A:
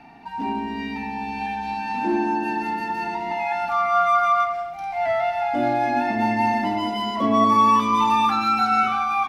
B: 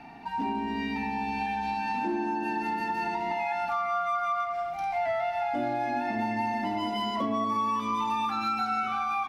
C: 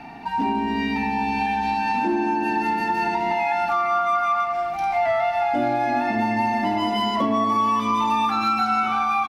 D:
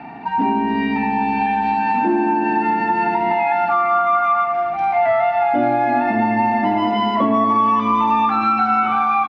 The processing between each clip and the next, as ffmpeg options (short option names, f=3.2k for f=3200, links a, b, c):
-af "acompressor=threshold=-27dB:ratio=5"
-af "aecho=1:1:833|1666|2499|3332:0.112|0.0595|0.0315|0.0167,volume=7.5dB"
-af "highpass=100,lowpass=2.3k,volume=5dB"